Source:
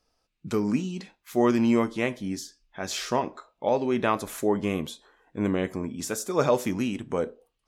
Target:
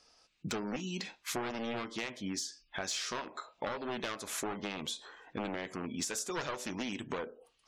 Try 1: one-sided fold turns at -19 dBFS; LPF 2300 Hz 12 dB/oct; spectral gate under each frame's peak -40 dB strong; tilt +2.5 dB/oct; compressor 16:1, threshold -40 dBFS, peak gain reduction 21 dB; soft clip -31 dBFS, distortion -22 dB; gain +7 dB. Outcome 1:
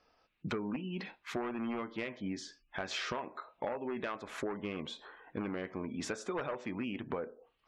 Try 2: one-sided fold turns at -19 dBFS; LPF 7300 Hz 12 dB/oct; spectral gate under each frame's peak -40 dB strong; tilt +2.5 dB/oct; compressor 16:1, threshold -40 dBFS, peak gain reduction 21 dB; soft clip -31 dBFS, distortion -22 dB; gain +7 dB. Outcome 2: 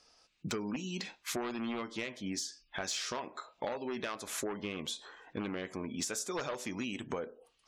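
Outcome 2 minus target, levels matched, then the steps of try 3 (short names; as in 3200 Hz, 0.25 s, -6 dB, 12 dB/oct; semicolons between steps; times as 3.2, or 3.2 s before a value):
one-sided fold: distortion -9 dB
one-sided fold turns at -25 dBFS; LPF 7300 Hz 12 dB/oct; spectral gate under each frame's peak -40 dB strong; tilt +2.5 dB/oct; compressor 16:1, threshold -40 dBFS, peak gain reduction 20 dB; soft clip -31 dBFS, distortion -22 dB; gain +7 dB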